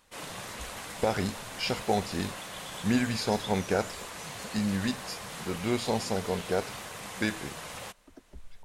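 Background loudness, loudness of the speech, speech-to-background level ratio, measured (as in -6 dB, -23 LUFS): -39.5 LUFS, -31.5 LUFS, 8.0 dB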